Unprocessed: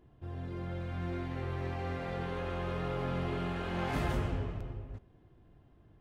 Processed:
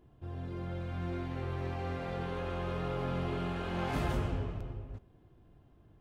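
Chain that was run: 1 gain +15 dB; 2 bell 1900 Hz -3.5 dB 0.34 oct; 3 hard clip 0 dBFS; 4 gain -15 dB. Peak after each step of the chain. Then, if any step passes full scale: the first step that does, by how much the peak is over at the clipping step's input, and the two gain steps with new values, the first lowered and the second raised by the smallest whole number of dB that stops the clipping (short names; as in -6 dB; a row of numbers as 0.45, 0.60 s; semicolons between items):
-5.5, -6.0, -6.0, -21.0 dBFS; no overload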